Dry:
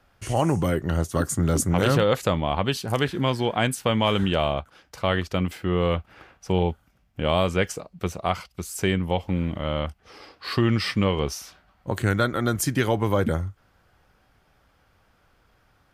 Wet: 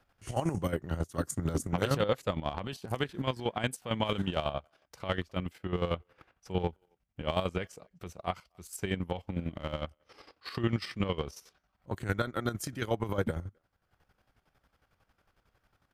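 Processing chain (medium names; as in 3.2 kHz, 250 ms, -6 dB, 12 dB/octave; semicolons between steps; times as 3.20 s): speakerphone echo 260 ms, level -29 dB; transient shaper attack -4 dB, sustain -8 dB; square tremolo 11 Hz, depth 65%, duty 40%; trim -5 dB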